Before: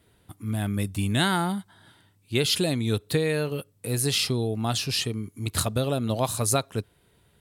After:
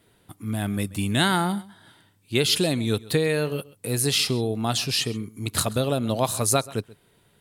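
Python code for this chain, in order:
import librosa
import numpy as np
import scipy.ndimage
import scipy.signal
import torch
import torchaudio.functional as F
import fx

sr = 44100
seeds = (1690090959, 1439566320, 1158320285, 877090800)

p1 = fx.peak_eq(x, sr, hz=62.0, db=-10.5, octaves=1.1)
p2 = p1 + fx.echo_single(p1, sr, ms=132, db=-20.5, dry=0)
y = F.gain(torch.from_numpy(p2), 2.5).numpy()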